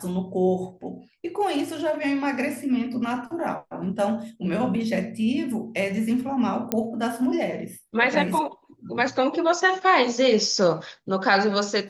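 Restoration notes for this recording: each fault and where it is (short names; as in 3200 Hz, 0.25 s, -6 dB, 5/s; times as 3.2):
6.72 pop -8 dBFS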